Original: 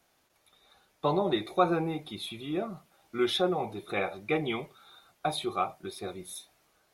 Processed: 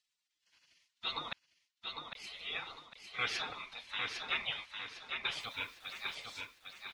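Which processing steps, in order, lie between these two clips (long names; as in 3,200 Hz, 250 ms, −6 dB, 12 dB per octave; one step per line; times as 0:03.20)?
gate on every frequency bin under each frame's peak −20 dB weak
low-pass filter 5,200 Hz 12 dB per octave
parametric band 3,400 Hz +11.5 dB 2.7 octaves
0:01.33–0:02.15: silence
0:05.40–0:06.15: bit-depth reduction 10 bits, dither none
repeating echo 803 ms, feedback 36%, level −5 dB
level −1.5 dB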